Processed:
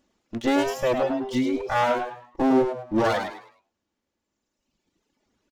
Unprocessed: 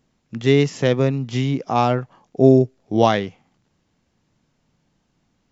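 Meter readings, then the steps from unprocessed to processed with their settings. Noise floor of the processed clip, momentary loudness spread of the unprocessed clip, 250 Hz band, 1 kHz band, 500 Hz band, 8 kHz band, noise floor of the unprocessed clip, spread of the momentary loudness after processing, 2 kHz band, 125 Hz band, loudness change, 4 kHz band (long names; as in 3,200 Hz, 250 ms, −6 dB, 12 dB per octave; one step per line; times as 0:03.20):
−82 dBFS, 11 LU, −4.5 dB, −2.5 dB, −6.0 dB, can't be measured, −68 dBFS, 7 LU, −1.0 dB, −17.5 dB, −5.5 dB, −5.5 dB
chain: lower of the sound and its delayed copy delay 3.5 ms
reverb reduction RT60 1.9 s
low-shelf EQ 86 Hz −7.5 dB
brickwall limiter −13 dBFS, peak gain reduction 8 dB
echo with shifted repeats 104 ms, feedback 30%, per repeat +120 Hz, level −6.5 dB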